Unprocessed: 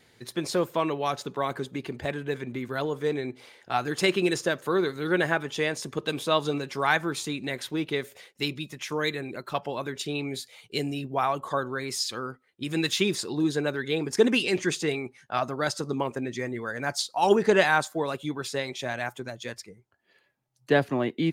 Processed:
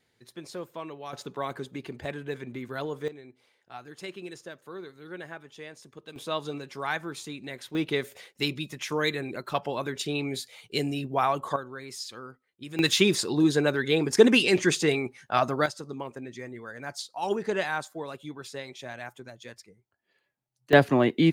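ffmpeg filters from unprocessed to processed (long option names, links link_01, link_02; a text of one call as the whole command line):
ffmpeg -i in.wav -af "asetnsamples=nb_out_samples=441:pad=0,asendcmd='1.13 volume volume -4dB;3.08 volume volume -16dB;6.16 volume volume -7dB;7.75 volume volume 1dB;11.56 volume volume -8.5dB;12.79 volume volume 3.5dB;15.66 volume volume -8dB;20.73 volume volume 5dB',volume=-12dB" out.wav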